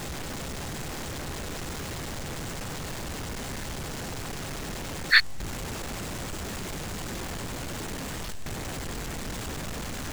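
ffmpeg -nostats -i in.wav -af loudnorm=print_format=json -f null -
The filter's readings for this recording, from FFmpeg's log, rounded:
"input_i" : "-32.5",
"input_tp" : "-3.4",
"input_lra" : "6.8",
"input_thresh" : "-42.5",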